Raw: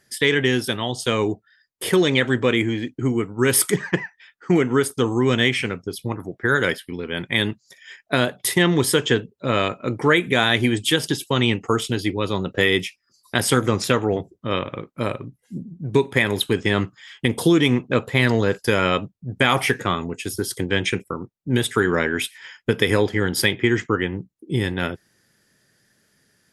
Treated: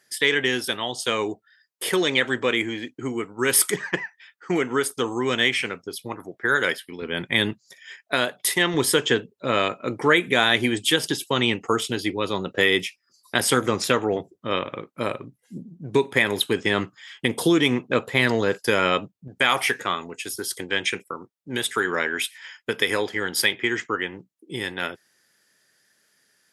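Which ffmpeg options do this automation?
ffmpeg -i in.wav -af "asetnsamples=nb_out_samples=441:pad=0,asendcmd='7.02 highpass f 150;8 highpass f 630;8.74 highpass f 290;19.28 highpass f 760',highpass=frequency=540:poles=1" out.wav

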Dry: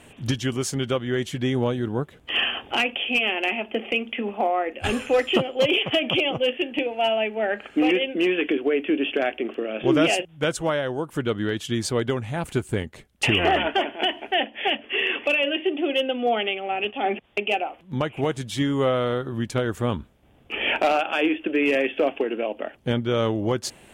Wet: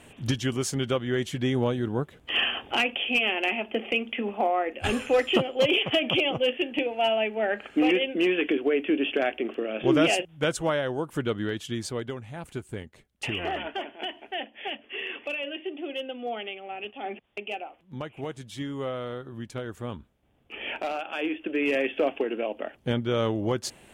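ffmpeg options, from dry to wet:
ffmpeg -i in.wav -af "volume=5.5dB,afade=type=out:start_time=11.09:duration=1.07:silence=0.375837,afade=type=in:start_time=20.97:duration=0.94:silence=0.421697" out.wav

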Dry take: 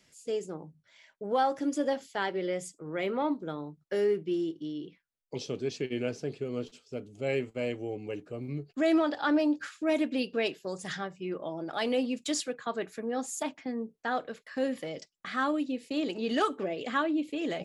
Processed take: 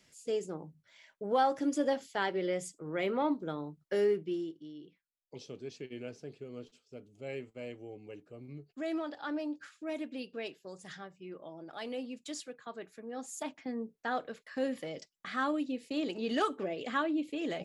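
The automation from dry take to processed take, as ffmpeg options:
ffmpeg -i in.wav -af "volume=6.5dB,afade=type=out:start_time=4.03:duration=0.58:silence=0.334965,afade=type=in:start_time=13.05:duration=0.68:silence=0.421697" out.wav

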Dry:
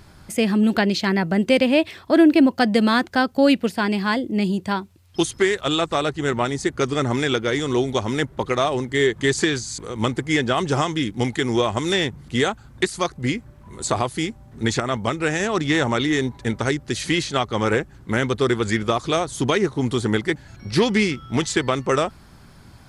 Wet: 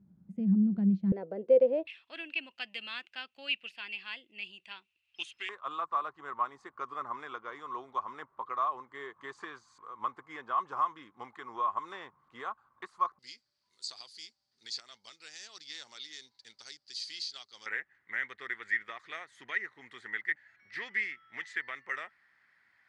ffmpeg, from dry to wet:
ffmpeg -i in.wav -af "asetnsamples=nb_out_samples=441:pad=0,asendcmd='1.12 bandpass f 500;1.87 bandpass f 2700;5.49 bandpass f 1100;13.19 bandpass f 4700;17.66 bandpass f 1900',bandpass=frequency=190:width_type=q:width=9.8:csg=0" out.wav

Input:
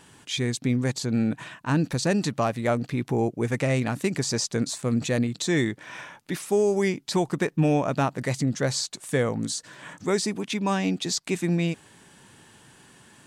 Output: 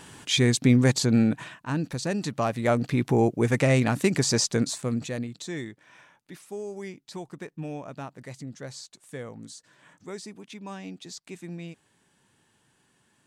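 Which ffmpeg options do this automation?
ffmpeg -i in.wav -af "volume=13.5dB,afade=type=out:start_time=1:duration=0.62:silence=0.298538,afade=type=in:start_time=2.2:duration=0.75:silence=0.398107,afade=type=out:start_time=4.43:duration=0.65:silence=0.316228,afade=type=out:start_time=5.08:duration=0.73:silence=0.446684" out.wav

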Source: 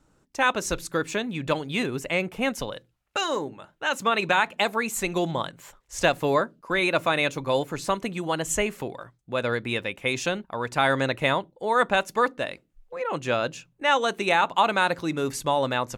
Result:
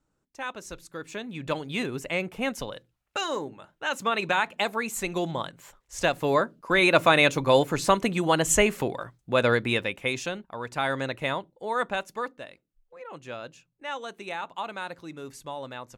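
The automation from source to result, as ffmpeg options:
ffmpeg -i in.wav -af "volume=4.5dB,afade=type=in:start_time=0.95:duration=0.69:silence=0.334965,afade=type=in:start_time=6.13:duration=0.92:silence=0.421697,afade=type=out:start_time=9.47:duration=0.81:silence=0.316228,afade=type=out:start_time=11.72:duration=0.77:silence=0.421697" out.wav

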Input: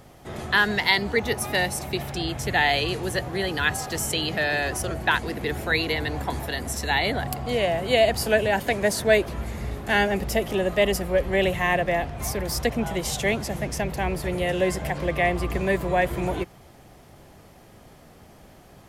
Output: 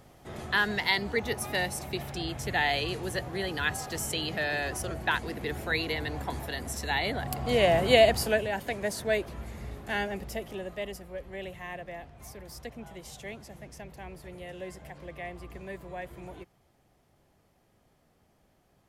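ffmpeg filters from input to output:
ffmpeg -i in.wav -af "volume=2dB,afade=type=in:start_time=7.22:duration=0.56:silence=0.398107,afade=type=out:start_time=7.78:duration=0.69:silence=0.281838,afade=type=out:start_time=9.8:duration=1.23:silence=0.375837" out.wav

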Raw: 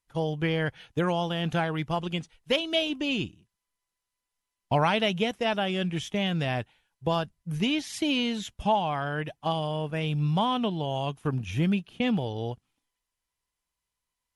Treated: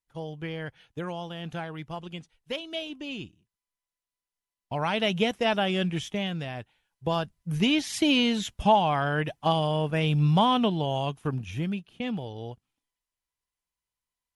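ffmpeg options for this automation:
ffmpeg -i in.wav -af "volume=14dB,afade=type=in:start_time=4.74:duration=0.46:silence=0.316228,afade=type=out:start_time=5.79:duration=0.74:silence=0.316228,afade=type=in:start_time=6.53:duration=1.34:silence=0.251189,afade=type=out:start_time=10.56:duration=1.12:silence=0.334965" out.wav

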